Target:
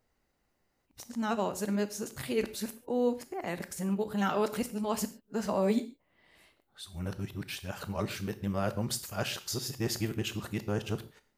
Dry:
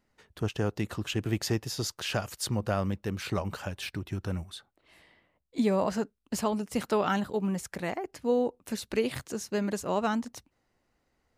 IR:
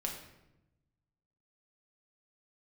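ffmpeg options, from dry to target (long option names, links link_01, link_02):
-filter_complex "[0:a]areverse,asplit=2[link_01][link_02];[link_02]aemphasis=mode=production:type=50fm[link_03];[1:a]atrim=start_sample=2205,afade=type=out:start_time=0.2:duration=0.01,atrim=end_sample=9261[link_04];[link_03][link_04]afir=irnorm=-1:irlink=0,volume=-7.5dB[link_05];[link_01][link_05]amix=inputs=2:normalize=0,volume=-5.5dB"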